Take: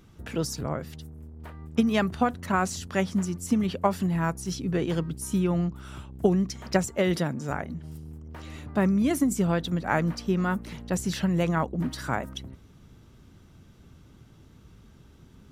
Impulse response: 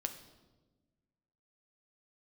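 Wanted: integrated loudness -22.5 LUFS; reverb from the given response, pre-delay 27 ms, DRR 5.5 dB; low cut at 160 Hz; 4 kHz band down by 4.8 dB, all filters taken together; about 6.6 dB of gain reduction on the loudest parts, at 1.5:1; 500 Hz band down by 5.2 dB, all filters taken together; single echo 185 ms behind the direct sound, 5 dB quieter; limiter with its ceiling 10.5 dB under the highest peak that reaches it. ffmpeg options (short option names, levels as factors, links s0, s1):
-filter_complex "[0:a]highpass=160,equalizer=f=500:t=o:g=-7,equalizer=f=4000:t=o:g=-6.5,acompressor=threshold=0.0112:ratio=1.5,alimiter=level_in=1.41:limit=0.0631:level=0:latency=1,volume=0.708,aecho=1:1:185:0.562,asplit=2[s0][s1];[1:a]atrim=start_sample=2205,adelay=27[s2];[s1][s2]afir=irnorm=-1:irlink=0,volume=0.531[s3];[s0][s3]amix=inputs=2:normalize=0,volume=4.47"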